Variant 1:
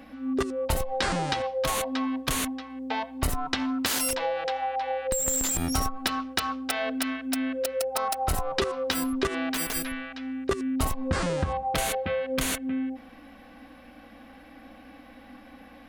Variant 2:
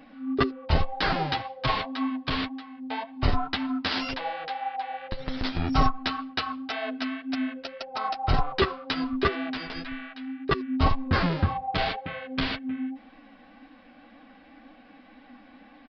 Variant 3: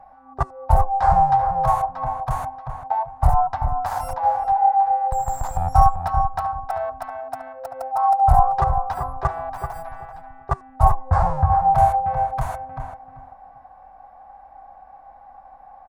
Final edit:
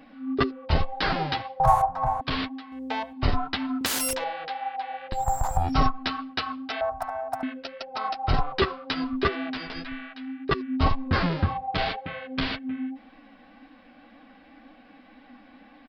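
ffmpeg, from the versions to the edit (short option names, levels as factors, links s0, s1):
-filter_complex "[2:a]asplit=3[s0][s1][s2];[0:a]asplit=2[s3][s4];[1:a]asplit=6[s5][s6][s7][s8][s9][s10];[s5]atrim=end=1.602[s11];[s0]atrim=start=1.598:end=2.212[s12];[s6]atrim=start=2.208:end=2.722[s13];[s3]atrim=start=2.718:end=3.132[s14];[s7]atrim=start=3.128:end=3.812[s15];[s4]atrim=start=3.808:end=4.242[s16];[s8]atrim=start=4.238:end=5.27[s17];[s1]atrim=start=5.11:end=5.74[s18];[s9]atrim=start=5.58:end=6.812[s19];[s2]atrim=start=6.808:end=7.432[s20];[s10]atrim=start=7.428[s21];[s11][s12]acrossfade=d=0.004:c1=hsin:c2=hsin[s22];[s22][s13]acrossfade=d=0.004:c1=hsin:c2=hsin[s23];[s23][s14]acrossfade=d=0.004:c1=hsin:c2=hsin[s24];[s24][s15]acrossfade=d=0.004:c1=hsin:c2=hsin[s25];[s25][s16]acrossfade=d=0.004:c1=hsin:c2=hsin[s26];[s26][s17]acrossfade=d=0.004:c1=hsin:c2=hsin[s27];[s27][s18]acrossfade=d=0.16:c1=tri:c2=tri[s28];[s28][s19]acrossfade=d=0.16:c1=tri:c2=tri[s29];[s29][s20]acrossfade=d=0.004:c1=hsin:c2=hsin[s30];[s30][s21]acrossfade=d=0.004:c1=hsin:c2=hsin"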